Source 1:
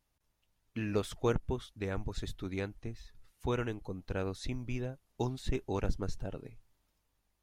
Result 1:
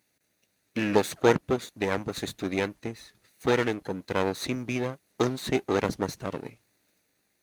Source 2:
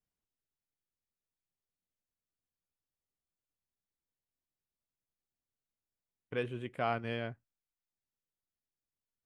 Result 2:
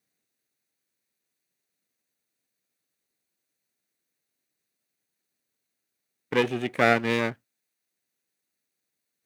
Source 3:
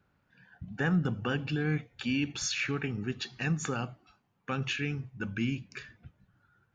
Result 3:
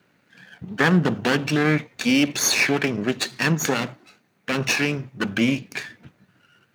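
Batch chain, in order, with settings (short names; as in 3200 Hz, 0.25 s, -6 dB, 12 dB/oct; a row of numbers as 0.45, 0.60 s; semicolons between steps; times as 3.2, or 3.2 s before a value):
minimum comb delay 0.48 ms; HPF 210 Hz 12 dB/oct; normalise peaks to -6 dBFS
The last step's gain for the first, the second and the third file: +11.5, +14.0, +14.0 dB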